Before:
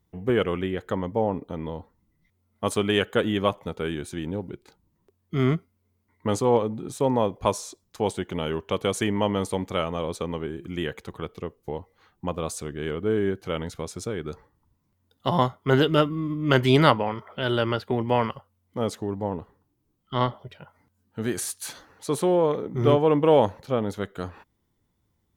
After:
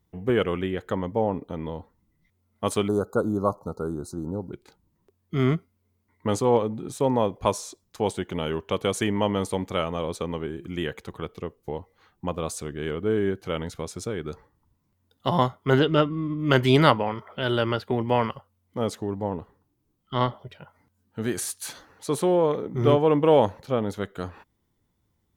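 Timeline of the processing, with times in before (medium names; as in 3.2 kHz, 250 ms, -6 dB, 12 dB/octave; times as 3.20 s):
2.88–4.53 s: Chebyshev band-stop 1.4–4.1 kHz, order 5
15.79–16.39 s: distance through air 88 m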